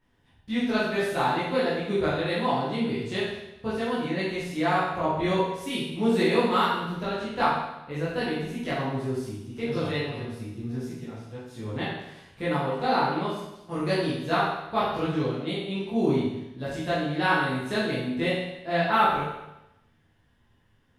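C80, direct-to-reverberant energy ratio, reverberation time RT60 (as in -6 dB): 3.5 dB, -10.5 dB, 0.90 s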